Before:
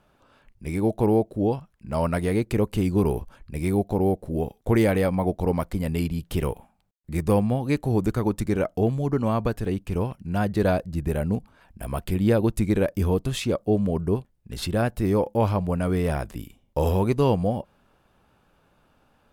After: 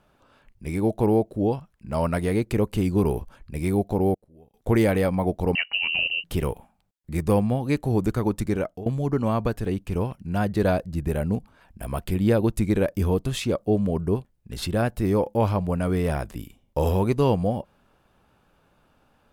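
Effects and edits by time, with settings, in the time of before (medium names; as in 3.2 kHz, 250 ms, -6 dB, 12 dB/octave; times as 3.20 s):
4.14–4.54 s: inverted gate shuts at -30 dBFS, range -26 dB
5.55–6.24 s: frequency inversion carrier 2.9 kHz
8.40–8.86 s: fade out equal-power, to -20.5 dB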